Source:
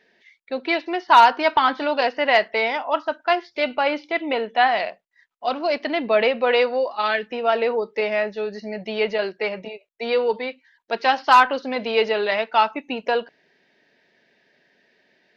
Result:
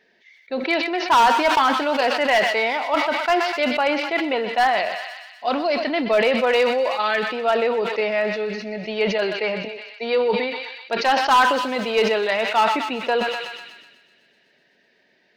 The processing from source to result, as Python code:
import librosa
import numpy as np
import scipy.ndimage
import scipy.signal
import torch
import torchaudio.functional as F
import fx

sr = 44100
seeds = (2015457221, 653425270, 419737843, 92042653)

p1 = np.clip(x, -10.0 ** (-11.5 / 20.0), 10.0 ** (-11.5 / 20.0))
p2 = p1 + fx.echo_thinned(p1, sr, ms=125, feedback_pct=80, hz=940.0, wet_db=-13.0, dry=0)
y = fx.sustainer(p2, sr, db_per_s=44.0)